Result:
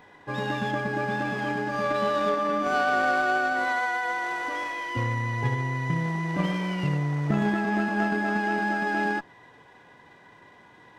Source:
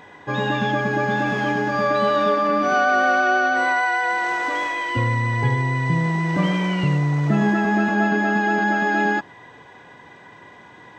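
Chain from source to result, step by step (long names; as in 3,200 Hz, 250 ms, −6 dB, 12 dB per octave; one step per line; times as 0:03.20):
harmonic generator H 3 −18 dB, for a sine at −7.5 dBFS
windowed peak hold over 3 samples
level −3.5 dB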